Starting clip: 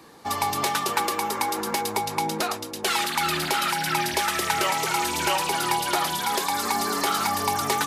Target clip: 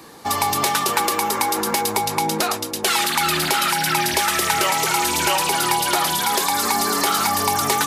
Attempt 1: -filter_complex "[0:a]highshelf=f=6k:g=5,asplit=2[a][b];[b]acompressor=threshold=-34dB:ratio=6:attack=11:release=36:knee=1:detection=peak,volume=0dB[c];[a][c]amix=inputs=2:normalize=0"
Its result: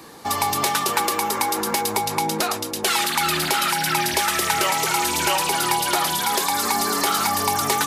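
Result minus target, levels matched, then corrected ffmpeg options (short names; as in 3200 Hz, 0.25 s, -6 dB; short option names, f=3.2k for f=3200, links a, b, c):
compressor: peak gain reduction +5 dB
-filter_complex "[0:a]highshelf=f=6k:g=5,asplit=2[a][b];[b]acompressor=threshold=-28dB:ratio=6:attack=11:release=36:knee=1:detection=peak,volume=0dB[c];[a][c]amix=inputs=2:normalize=0"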